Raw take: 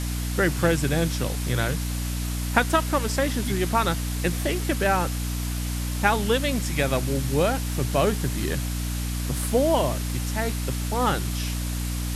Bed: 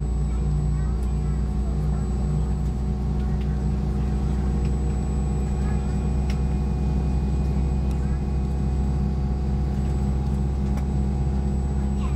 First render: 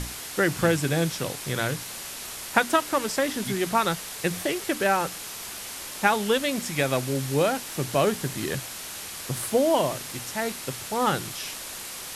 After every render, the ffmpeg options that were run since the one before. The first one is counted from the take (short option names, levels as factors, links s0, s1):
-af "bandreject=f=60:t=h:w=6,bandreject=f=120:t=h:w=6,bandreject=f=180:t=h:w=6,bandreject=f=240:t=h:w=6,bandreject=f=300:t=h:w=6"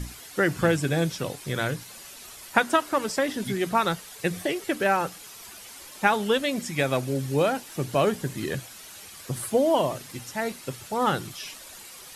-af "afftdn=nr=10:nf=-37"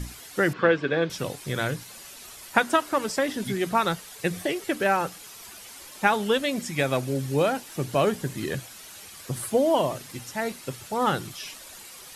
-filter_complex "[0:a]asettb=1/sr,asplit=3[s0][s1][s2];[s0]atrim=end=0.534[s3];[s1]atrim=start=0.53:end=1.1,asetpts=PTS-STARTPTS,afade=t=in:d=0.004:c=qsin,afade=t=out:st=0.566:d=0.004:c=qsin,highpass=240,equalizer=f=460:t=q:w=4:g=6,equalizer=f=760:t=q:w=4:g=-4,equalizer=f=1100:t=q:w=4:g=6,equalizer=f=1600:t=q:w=4:g=4,lowpass=f=3900:w=0.5412,lowpass=f=3900:w=1.3066[s4];[s2]atrim=start=1.096[s5];[s3][s4]acrossfade=d=0.004:c1=hsin:c2=qsin[s6];[s6][s5]acrossfade=d=0.004:c1=qsin:c2=hsin"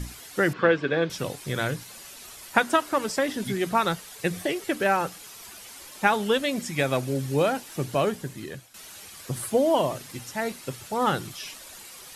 -filter_complex "[0:a]asplit=2[s0][s1];[s0]atrim=end=8.74,asetpts=PTS-STARTPTS,afade=t=out:st=7.81:d=0.93:silence=0.211349[s2];[s1]atrim=start=8.74,asetpts=PTS-STARTPTS,afade=t=in:d=0.004:c=hsin:silence=0.211349[s3];[s2][s3]concat=n=2:v=0:a=1"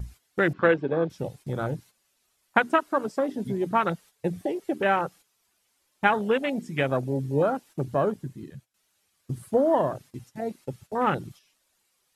-af "afwtdn=0.0447,agate=range=0.282:threshold=0.00447:ratio=16:detection=peak"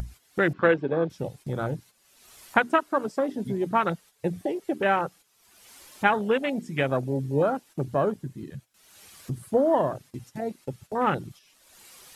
-af "acompressor=mode=upward:threshold=0.0282:ratio=2.5"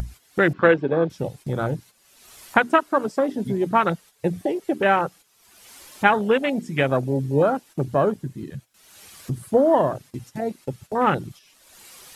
-af "volume=1.68,alimiter=limit=0.891:level=0:latency=1"